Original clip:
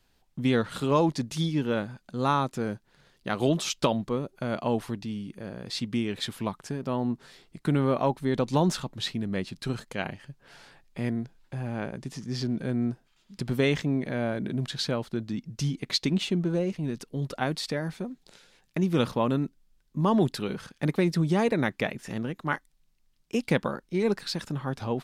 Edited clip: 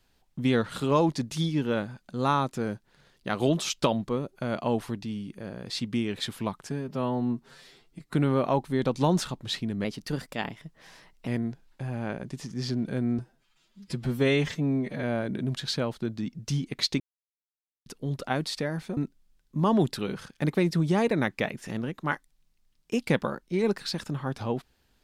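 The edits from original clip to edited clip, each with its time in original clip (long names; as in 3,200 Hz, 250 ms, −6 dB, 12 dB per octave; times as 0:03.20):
0:06.70–0:07.65: time-stretch 1.5×
0:09.37–0:11.00: play speed 114%
0:12.91–0:14.14: time-stretch 1.5×
0:16.11–0:16.97: silence
0:18.08–0:19.38: remove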